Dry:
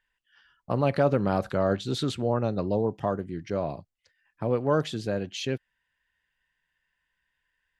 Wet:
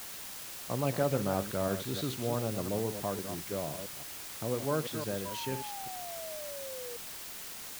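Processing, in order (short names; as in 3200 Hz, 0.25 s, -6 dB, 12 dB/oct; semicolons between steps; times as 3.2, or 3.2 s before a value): reverse delay 0.168 s, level -8.5 dB; requantised 6-bit, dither triangular; painted sound fall, 5.25–6.97, 470–1000 Hz -36 dBFS; gain -7.5 dB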